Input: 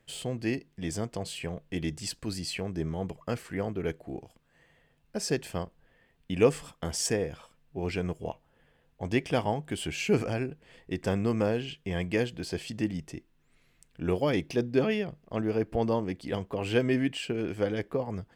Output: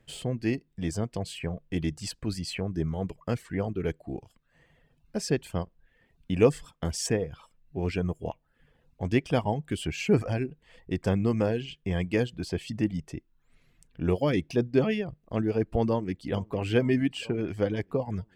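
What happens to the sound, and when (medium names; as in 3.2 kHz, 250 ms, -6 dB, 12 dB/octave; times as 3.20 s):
15.89–16.33 s: echo throw 450 ms, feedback 75%, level -16 dB
whole clip: treble shelf 7.7 kHz -3.5 dB; reverb removal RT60 0.54 s; bass shelf 250 Hz +6.5 dB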